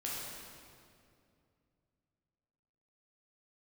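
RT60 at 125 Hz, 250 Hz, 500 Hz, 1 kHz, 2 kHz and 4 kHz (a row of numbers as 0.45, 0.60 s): 3.5, 3.1, 2.7, 2.2, 2.0, 1.8 s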